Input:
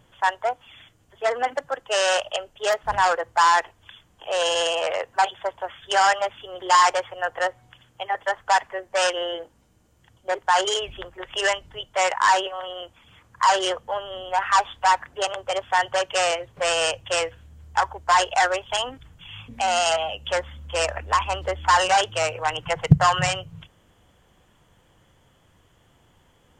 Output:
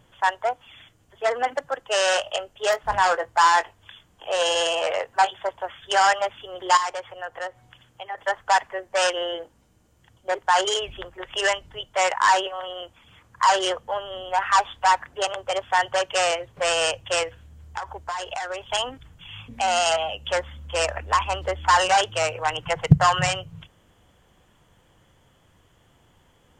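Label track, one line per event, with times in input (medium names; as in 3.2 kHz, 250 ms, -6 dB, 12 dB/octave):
2.060000	5.490000	doubling 21 ms -11.5 dB
6.770000	8.180000	compression 1.5:1, threshold -41 dBFS
17.230000	18.700000	compression 10:1, threshold -26 dBFS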